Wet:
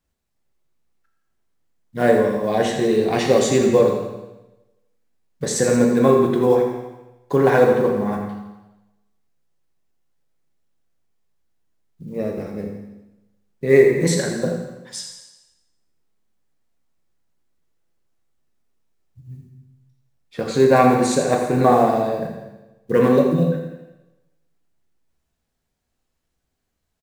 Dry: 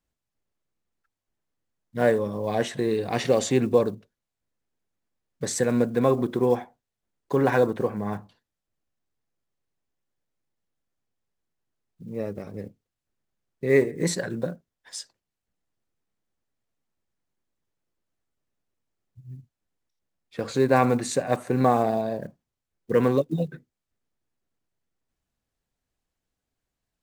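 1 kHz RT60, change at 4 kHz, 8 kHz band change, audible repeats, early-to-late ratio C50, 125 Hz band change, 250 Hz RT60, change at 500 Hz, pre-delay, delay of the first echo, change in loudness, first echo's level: 1.0 s, +6.0 dB, +6.0 dB, 3, 3.5 dB, +5.0 dB, 1.0 s, +7.0 dB, 5 ms, 83 ms, +6.5 dB, −9.0 dB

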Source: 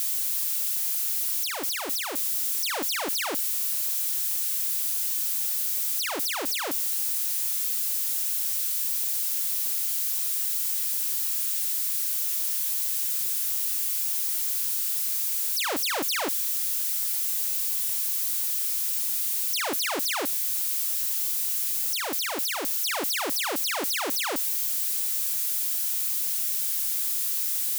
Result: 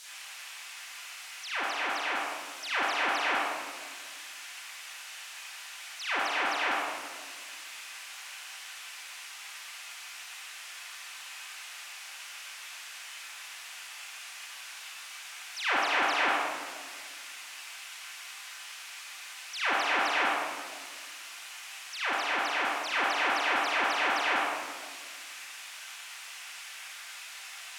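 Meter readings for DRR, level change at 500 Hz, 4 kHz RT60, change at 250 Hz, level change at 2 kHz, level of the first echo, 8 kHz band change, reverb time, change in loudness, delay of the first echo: −12.5 dB, −1.5 dB, 1.1 s, −5.0 dB, +5.0 dB, no echo audible, −15.5 dB, 1.6 s, −9.0 dB, no echo audible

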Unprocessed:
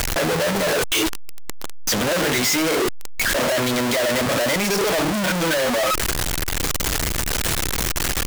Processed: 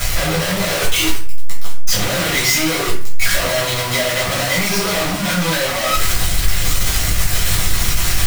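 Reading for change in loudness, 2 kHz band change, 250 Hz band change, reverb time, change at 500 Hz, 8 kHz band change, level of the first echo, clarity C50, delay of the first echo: +3.5 dB, +3.5 dB, 0.0 dB, 0.45 s, −1.0 dB, +4.0 dB, no echo audible, 5.5 dB, no echo audible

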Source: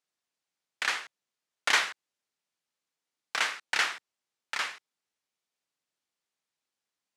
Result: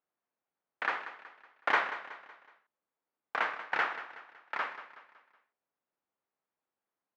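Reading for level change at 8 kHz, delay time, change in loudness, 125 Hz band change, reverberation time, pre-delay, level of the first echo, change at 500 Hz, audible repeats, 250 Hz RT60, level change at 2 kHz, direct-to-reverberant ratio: below −25 dB, 186 ms, −4.0 dB, can't be measured, no reverb audible, no reverb audible, −13.0 dB, +3.5 dB, 4, no reverb audible, −3.5 dB, no reverb audible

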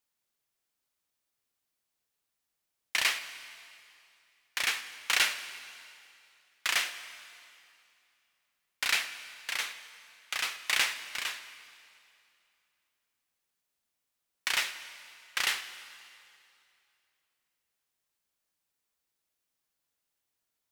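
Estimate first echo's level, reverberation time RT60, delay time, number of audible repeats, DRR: no echo audible, 2.6 s, no echo audible, no echo audible, 10.5 dB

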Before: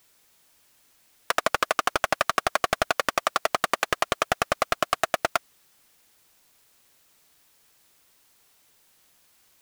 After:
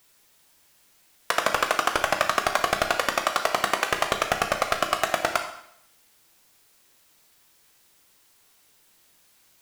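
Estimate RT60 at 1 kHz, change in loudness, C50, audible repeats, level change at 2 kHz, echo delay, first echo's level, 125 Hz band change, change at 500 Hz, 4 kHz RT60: 0.70 s, +1.5 dB, 7.5 dB, no echo audible, +1.5 dB, no echo audible, no echo audible, +1.0 dB, +1.0 dB, 0.70 s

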